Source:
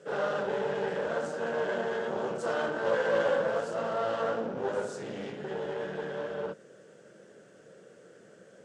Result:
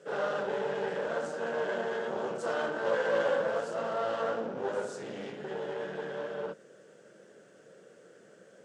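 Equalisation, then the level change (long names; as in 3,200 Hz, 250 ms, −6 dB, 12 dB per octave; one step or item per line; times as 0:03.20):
low-shelf EQ 110 Hz −9.5 dB
−1.0 dB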